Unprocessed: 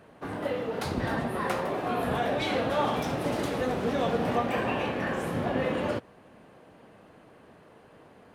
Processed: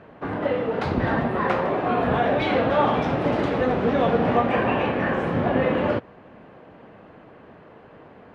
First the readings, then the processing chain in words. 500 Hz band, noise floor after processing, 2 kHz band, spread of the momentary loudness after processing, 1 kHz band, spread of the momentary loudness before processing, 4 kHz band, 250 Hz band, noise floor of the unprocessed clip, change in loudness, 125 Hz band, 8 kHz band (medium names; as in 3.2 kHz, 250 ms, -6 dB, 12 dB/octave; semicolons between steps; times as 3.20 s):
+7.0 dB, -48 dBFS, +6.0 dB, 4 LU, +7.0 dB, 4 LU, +1.5 dB, +7.0 dB, -55 dBFS, +7.0 dB, +7.0 dB, under -10 dB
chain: low-pass 2.7 kHz 12 dB/octave; trim +7 dB